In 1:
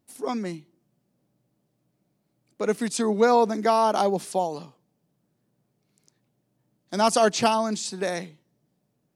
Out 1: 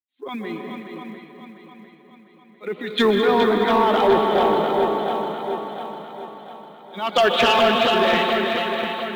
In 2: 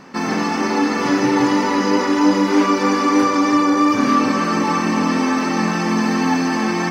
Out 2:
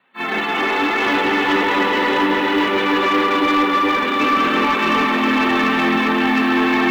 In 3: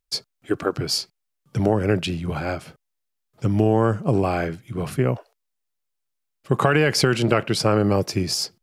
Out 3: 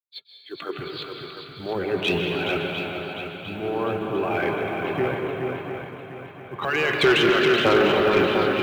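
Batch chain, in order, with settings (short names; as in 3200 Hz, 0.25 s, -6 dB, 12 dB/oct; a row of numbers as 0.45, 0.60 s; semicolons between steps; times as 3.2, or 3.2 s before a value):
per-bin expansion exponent 1.5; compressor 6:1, threshold -24 dBFS; tilt +4.5 dB/oct; transient shaper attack -10 dB, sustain +8 dB; steep low-pass 3800 Hz 96 dB/oct; swung echo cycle 0.701 s, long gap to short 1.5:1, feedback 56%, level -5.5 dB; plate-style reverb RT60 2.8 s, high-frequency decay 0.8×, pre-delay 0.12 s, DRR 2 dB; short-mantissa float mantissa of 4-bit; HPF 58 Hz; dynamic EQ 380 Hz, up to +8 dB, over -47 dBFS, Q 3.2; soft clip -20 dBFS; three-band expander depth 40%; normalise peaks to -6 dBFS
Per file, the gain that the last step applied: +10.0, +10.0, +6.5 dB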